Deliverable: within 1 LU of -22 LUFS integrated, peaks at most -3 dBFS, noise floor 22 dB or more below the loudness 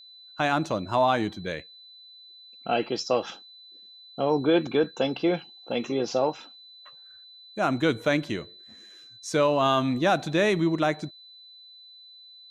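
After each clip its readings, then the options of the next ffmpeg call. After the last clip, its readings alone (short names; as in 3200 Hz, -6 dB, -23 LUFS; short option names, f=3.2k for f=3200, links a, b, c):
steady tone 4000 Hz; tone level -47 dBFS; loudness -26.0 LUFS; peak -10.5 dBFS; loudness target -22.0 LUFS
-> -af "bandreject=f=4k:w=30"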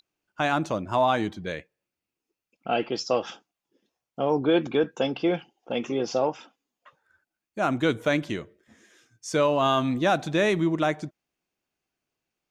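steady tone none; loudness -26.0 LUFS; peak -11.0 dBFS; loudness target -22.0 LUFS
-> -af "volume=4dB"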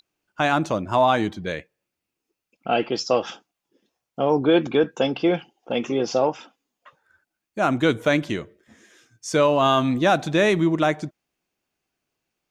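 loudness -22.0 LUFS; peak -7.0 dBFS; noise floor -84 dBFS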